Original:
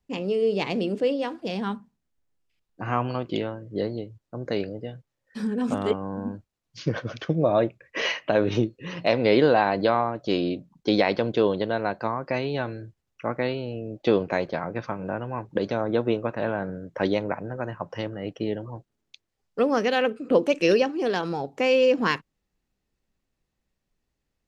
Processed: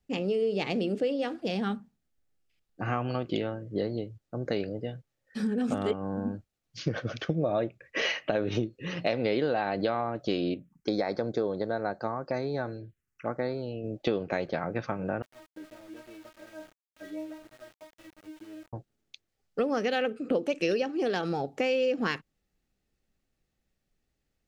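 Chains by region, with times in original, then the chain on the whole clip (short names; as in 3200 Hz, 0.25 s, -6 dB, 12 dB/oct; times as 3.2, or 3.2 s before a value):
10.54–13.84 low shelf 450 Hz -4.5 dB + envelope phaser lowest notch 540 Hz, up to 2900 Hz, full sweep at -27 dBFS
15.22–18.73 air absorption 340 m + metallic resonator 310 Hz, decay 0.44 s, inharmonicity 0.002 + sample gate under -49.5 dBFS
whole clip: notch 1000 Hz, Q 5.7; compressor 4:1, threshold -25 dBFS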